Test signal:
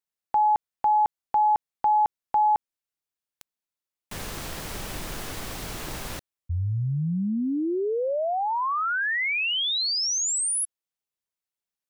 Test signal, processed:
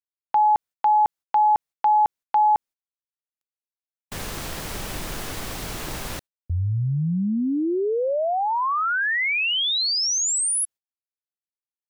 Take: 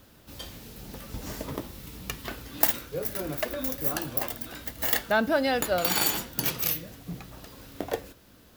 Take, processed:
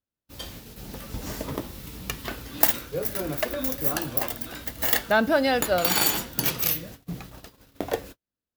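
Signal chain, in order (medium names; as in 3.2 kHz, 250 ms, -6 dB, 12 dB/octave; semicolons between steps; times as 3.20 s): gate -44 dBFS, range -41 dB; trim +3 dB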